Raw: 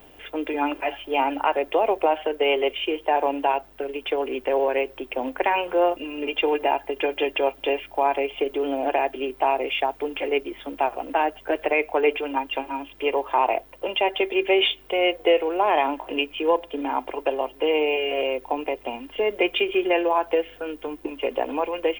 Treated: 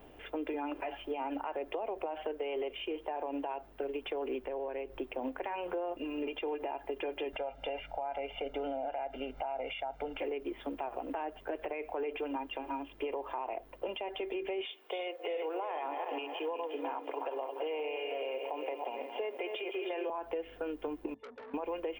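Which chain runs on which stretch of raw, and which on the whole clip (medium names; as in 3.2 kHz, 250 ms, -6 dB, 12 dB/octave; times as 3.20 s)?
4.44–4.98 s: bass shelf 130 Hz +8.5 dB + compression 2:1, threshold -39 dBFS
7.33–10.18 s: treble shelf 8.6 kHz -10 dB + comb 1.4 ms, depth 88% + upward compressor, threshold -37 dBFS
14.65–20.10 s: backward echo that repeats 175 ms, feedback 56%, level -8.5 dB + Bessel high-pass 480 Hz, order 6
21.14–21.54 s: pitch-class resonator A, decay 0.15 s + transformer saturation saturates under 3 kHz
whole clip: peak limiter -20 dBFS; compression, threshold -29 dBFS; treble shelf 2.3 kHz -10.5 dB; trim -3 dB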